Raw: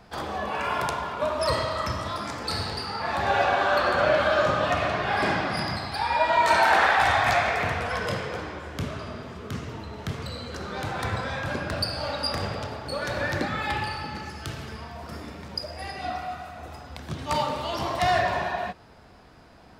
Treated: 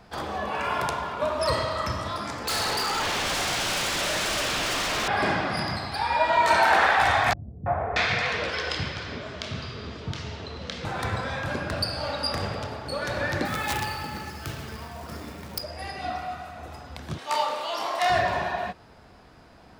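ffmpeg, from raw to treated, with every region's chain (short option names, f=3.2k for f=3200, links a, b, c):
-filter_complex "[0:a]asettb=1/sr,asplit=3[a][b][c];[a]atrim=end=2.474[d];[b]atrim=start=2.47:end=5.08,asetpts=PTS-STARTPTS,afade=t=in:d=0.004:c=qsin,afade=t=out:st=2.606:d=0.004:c=qsin,asplit=2[e][f];[f]highpass=f=720:p=1,volume=18dB,asoftclip=type=tanh:threshold=-9.5dB[g];[e][g]amix=inputs=2:normalize=0,lowpass=f=3.3k:p=1,volume=-6dB,aeval=exprs='0.0794*(abs(mod(val(0)/0.0794+3,4)-2)-1)':c=same[h];[c]atrim=start=5.076[i];[d][h]acrossfade=d=0.004:c1=hsin:c2=qsin[j];[j][i]acrossfade=d=0.004:c1=qsin:c2=hsin,asettb=1/sr,asplit=3[k][l][m];[k]atrim=end=7.334[n];[l]atrim=start=7.33:end=10.85,asetpts=PTS-STARTPTS,afade=t=in:d=0.004:c=qsin,afade=t=out:st=3.516:d=0.004:c=qsin,lowpass=5.9k,equalizer=f=4.4k:w=0.87:g=9,acrossover=split=240|1100[o][p][q];[p]adelay=330[r];[q]adelay=630[s];[o][r][s]amix=inputs=3:normalize=0,atrim=end_sample=155232[t];[m]atrim=start=10.846[u];[n][t]acrossfade=d=0.004:c1=hsin:c2=qsin[v];[v][u]acrossfade=d=0.004:c1=qsin:c2=hsin,asettb=1/sr,asplit=3[w][x][y];[w]atrim=end=13.454[z];[x]atrim=start=13.45:end=15.62,asetpts=PTS-STARTPTS,afade=t=in:d=0.004:c=qsin,afade=t=out:st=2.166:d=0.004:c=qsin,aeval=exprs='(mod(9.44*val(0)+1,2)-1)/9.44':c=same,acrusher=bits=3:mode=log:mix=0:aa=0.000001[aa];[y]atrim=start=15.616[ab];[z][aa]acrossfade=d=0.004:c1=hsin:c2=qsin[ac];[ac][ab]acrossfade=d=0.004:c1=qsin:c2=hsin,asettb=1/sr,asplit=3[ad][ae][af];[ad]atrim=end=17.184[ag];[ae]atrim=start=17.18:end=18.1,asetpts=PTS-STARTPTS,afade=t=in:d=0.004:c=qsin,afade=t=out:st=0.916:d=0.004:c=qsin,highpass=540,asplit=2[ah][ai];[ai]adelay=28,volume=-5dB[aj];[ah][aj]amix=inputs=2:normalize=0,atrim=end_sample=40572[ak];[af]atrim=start=18.096[al];[ag][ak]acrossfade=d=0.004:c1=hsin:c2=qsin[am];[am][al]acrossfade=d=0.004:c1=qsin:c2=hsin"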